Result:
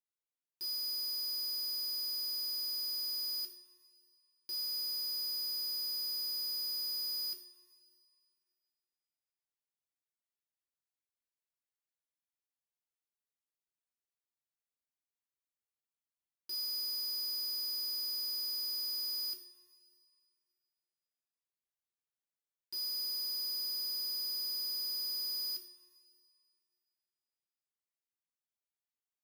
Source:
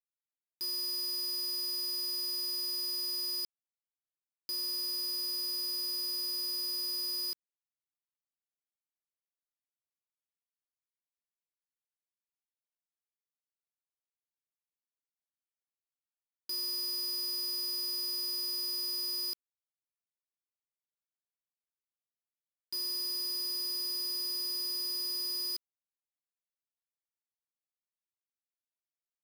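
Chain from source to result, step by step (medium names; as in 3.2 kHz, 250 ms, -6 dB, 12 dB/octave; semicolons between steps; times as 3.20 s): two-slope reverb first 0.5 s, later 2.4 s, from -17 dB, DRR 2 dB; trim -6.5 dB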